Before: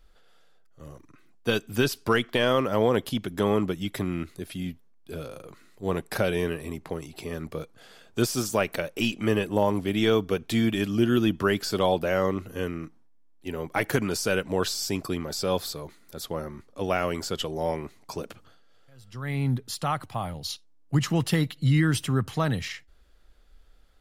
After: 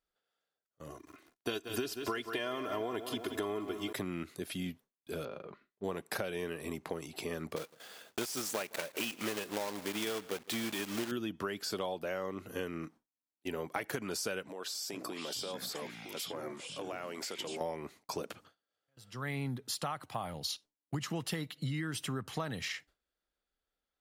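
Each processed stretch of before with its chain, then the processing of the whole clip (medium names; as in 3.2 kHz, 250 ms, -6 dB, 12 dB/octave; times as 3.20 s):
0.89–3.93 s: comb 2.9 ms, depth 76% + bit-crushed delay 179 ms, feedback 55%, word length 8-bit, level -12 dB
5.25–5.84 s: expander -49 dBFS + distance through air 310 m + comb 5 ms, depth 35%
7.56–11.12 s: block-companded coder 3-bit + bass shelf 180 Hz -8 dB + delay 161 ms -24 dB
14.49–17.61 s: high-pass 240 Hz + compression 16:1, threshold -35 dBFS + ever faster or slower copies 429 ms, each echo -7 st, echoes 2, each echo -6 dB
whole clip: gate with hold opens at -42 dBFS; high-pass 260 Hz 6 dB/octave; compression 10:1, threshold -33 dBFS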